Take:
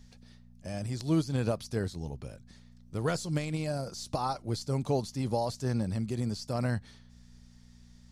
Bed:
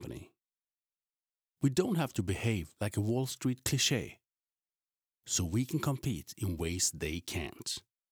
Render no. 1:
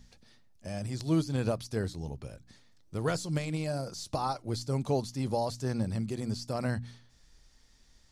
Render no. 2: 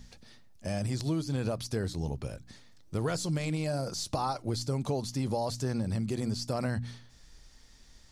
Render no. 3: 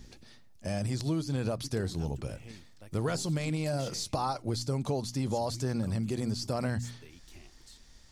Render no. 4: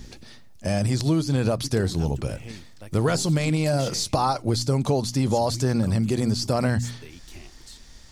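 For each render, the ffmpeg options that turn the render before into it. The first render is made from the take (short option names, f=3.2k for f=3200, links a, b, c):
-af "bandreject=f=60:t=h:w=4,bandreject=f=120:t=h:w=4,bandreject=f=180:t=h:w=4,bandreject=f=240:t=h:w=4,bandreject=f=300:t=h:w=4"
-filter_complex "[0:a]asplit=2[a][b];[b]alimiter=level_in=3.5dB:limit=-24dB:level=0:latency=1,volume=-3.5dB,volume=-1dB[c];[a][c]amix=inputs=2:normalize=0,acompressor=threshold=-27dB:ratio=6"
-filter_complex "[1:a]volume=-18dB[a];[0:a][a]amix=inputs=2:normalize=0"
-af "volume=9dB"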